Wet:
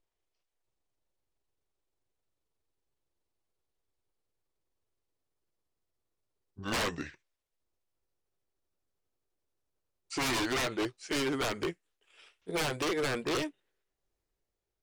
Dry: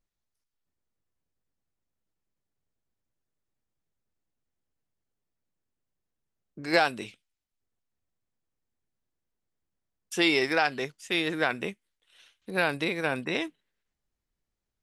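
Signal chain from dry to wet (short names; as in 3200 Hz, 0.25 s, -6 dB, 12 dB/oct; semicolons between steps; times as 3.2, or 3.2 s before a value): gliding pitch shift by -12 st ending unshifted; EQ curve 110 Hz 0 dB, 220 Hz -5 dB, 380 Hz +8 dB, 1500 Hz 0 dB; wavefolder -25.5 dBFS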